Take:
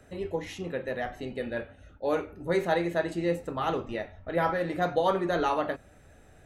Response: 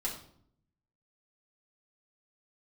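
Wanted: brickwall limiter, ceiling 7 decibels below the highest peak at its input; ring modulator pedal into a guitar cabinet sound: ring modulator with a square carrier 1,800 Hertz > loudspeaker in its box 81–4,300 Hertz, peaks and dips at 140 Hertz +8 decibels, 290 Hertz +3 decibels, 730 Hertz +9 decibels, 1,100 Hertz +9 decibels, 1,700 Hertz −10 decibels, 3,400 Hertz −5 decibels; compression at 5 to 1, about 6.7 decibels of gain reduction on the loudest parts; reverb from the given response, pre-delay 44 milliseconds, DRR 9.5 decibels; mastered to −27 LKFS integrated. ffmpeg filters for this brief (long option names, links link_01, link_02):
-filter_complex "[0:a]acompressor=threshold=-28dB:ratio=5,alimiter=level_in=2dB:limit=-24dB:level=0:latency=1,volume=-2dB,asplit=2[link_01][link_02];[1:a]atrim=start_sample=2205,adelay=44[link_03];[link_02][link_03]afir=irnorm=-1:irlink=0,volume=-12.5dB[link_04];[link_01][link_04]amix=inputs=2:normalize=0,aeval=exprs='val(0)*sgn(sin(2*PI*1800*n/s))':channel_layout=same,highpass=81,equalizer=frequency=140:width_type=q:width=4:gain=8,equalizer=frequency=290:width_type=q:width=4:gain=3,equalizer=frequency=730:width_type=q:width=4:gain=9,equalizer=frequency=1100:width_type=q:width=4:gain=9,equalizer=frequency=1700:width_type=q:width=4:gain=-10,equalizer=frequency=3400:width_type=q:width=4:gain=-5,lowpass=frequency=4300:width=0.5412,lowpass=frequency=4300:width=1.3066,volume=7.5dB"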